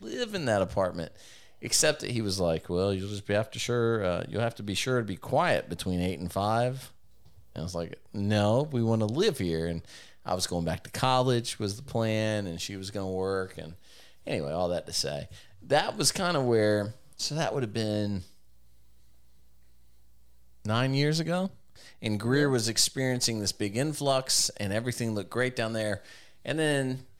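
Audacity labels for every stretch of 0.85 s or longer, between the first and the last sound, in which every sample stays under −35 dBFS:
18.210000	20.650000	silence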